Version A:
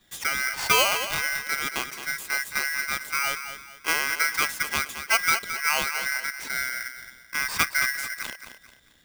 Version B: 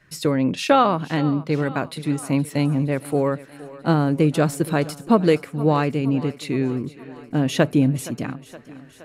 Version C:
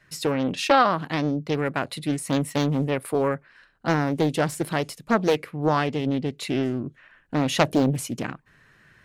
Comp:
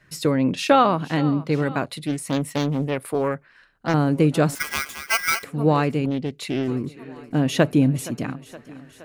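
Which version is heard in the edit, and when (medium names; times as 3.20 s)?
B
1.85–3.94 s: from C
4.55–5.44 s: from A
6.06–6.68 s: from C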